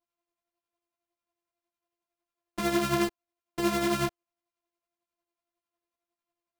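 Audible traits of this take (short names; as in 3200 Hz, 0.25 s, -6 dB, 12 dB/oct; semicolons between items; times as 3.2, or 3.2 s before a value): a buzz of ramps at a fixed pitch in blocks of 128 samples; tremolo triangle 11 Hz, depth 60%; a shimmering, thickened sound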